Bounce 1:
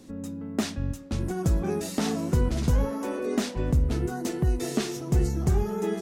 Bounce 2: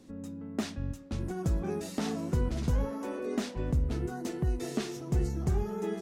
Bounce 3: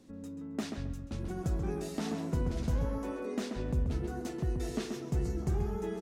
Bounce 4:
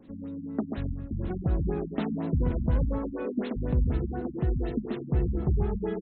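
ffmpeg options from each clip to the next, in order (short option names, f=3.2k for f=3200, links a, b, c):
-af "highshelf=f=6.5k:g=-5,volume=-5.5dB"
-filter_complex "[0:a]asplit=2[a][b];[b]adelay=134,lowpass=f=3.1k:p=1,volume=-5dB,asplit=2[c][d];[d]adelay=134,lowpass=f=3.1k:p=1,volume=0.25,asplit=2[e][f];[f]adelay=134,lowpass=f=3.1k:p=1,volume=0.25[g];[a][c][e][g]amix=inputs=4:normalize=0,volume=-3.5dB"
-af "afftfilt=real='re*lt(b*sr/1024,250*pow(4300/250,0.5+0.5*sin(2*PI*4.1*pts/sr)))':imag='im*lt(b*sr/1024,250*pow(4300/250,0.5+0.5*sin(2*PI*4.1*pts/sr)))':win_size=1024:overlap=0.75,volume=6dB"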